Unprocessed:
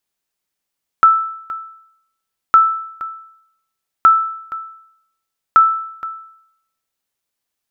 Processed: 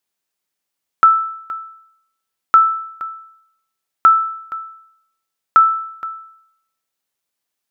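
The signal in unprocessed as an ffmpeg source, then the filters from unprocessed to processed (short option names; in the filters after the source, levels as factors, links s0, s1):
-f lavfi -i "aevalsrc='0.75*(sin(2*PI*1320*mod(t,1.51))*exp(-6.91*mod(t,1.51)/0.73)+0.15*sin(2*PI*1320*max(mod(t,1.51)-0.47,0))*exp(-6.91*max(mod(t,1.51)-0.47,0)/0.73))':d=6.04:s=44100"
-af "lowshelf=f=81:g=-10.5"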